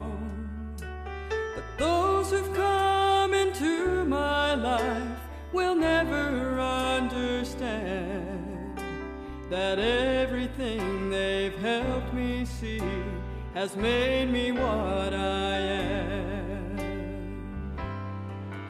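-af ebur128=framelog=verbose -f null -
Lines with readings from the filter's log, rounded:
Integrated loudness:
  I:         -28.6 LUFS
  Threshold: -38.6 LUFS
Loudness range:
  LRA:         4.9 LU
  Threshold: -48.2 LUFS
  LRA low:   -30.7 LUFS
  LRA high:  -25.8 LUFS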